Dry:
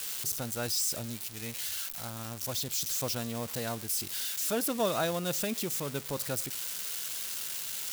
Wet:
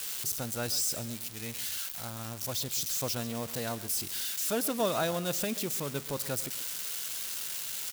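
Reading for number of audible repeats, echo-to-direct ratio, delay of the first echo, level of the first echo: 2, -16.0 dB, 134 ms, -16.5 dB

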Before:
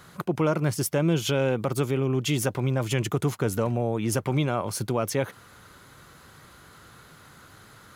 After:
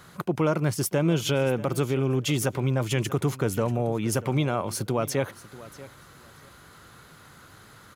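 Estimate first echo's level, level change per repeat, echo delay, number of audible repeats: -18.0 dB, -14.5 dB, 637 ms, 2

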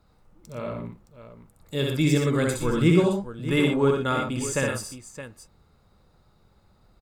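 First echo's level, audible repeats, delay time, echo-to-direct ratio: -3.0 dB, 3, 65 ms, -1.0 dB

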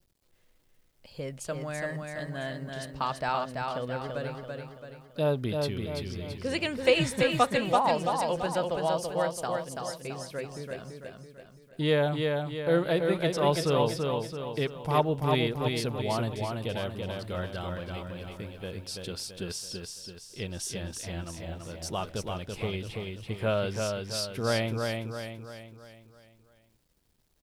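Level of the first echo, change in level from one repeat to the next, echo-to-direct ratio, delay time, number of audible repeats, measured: -4.0 dB, -6.5 dB, -3.0 dB, 334 ms, 5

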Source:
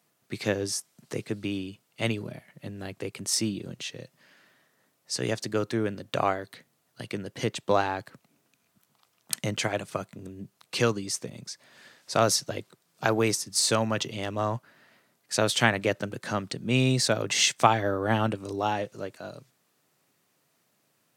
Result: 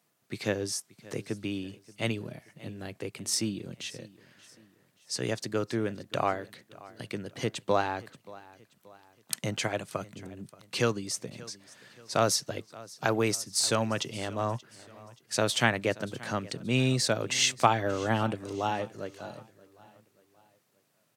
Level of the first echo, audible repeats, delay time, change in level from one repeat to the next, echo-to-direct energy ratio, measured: -20.5 dB, 3, 579 ms, -7.0 dB, -19.5 dB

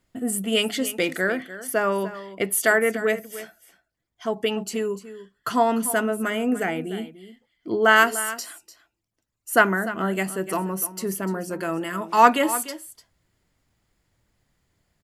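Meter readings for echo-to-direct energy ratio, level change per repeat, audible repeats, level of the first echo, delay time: -14.5 dB, no regular repeats, 1, -14.5 dB, 297 ms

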